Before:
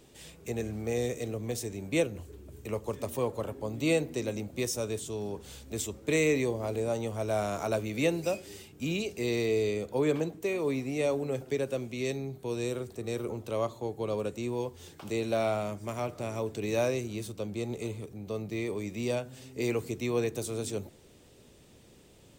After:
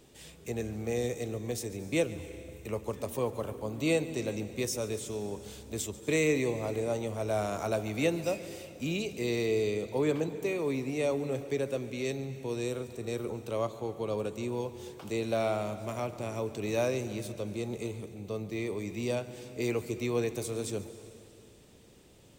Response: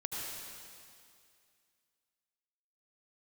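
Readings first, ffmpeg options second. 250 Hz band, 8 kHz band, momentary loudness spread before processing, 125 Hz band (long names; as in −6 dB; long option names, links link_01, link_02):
−0.5 dB, −1.0 dB, 9 LU, −0.5 dB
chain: -filter_complex "[0:a]asplit=2[link_01][link_02];[1:a]atrim=start_sample=2205,adelay=141[link_03];[link_02][link_03]afir=irnorm=-1:irlink=0,volume=-15dB[link_04];[link_01][link_04]amix=inputs=2:normalize=0,volume=-1dB"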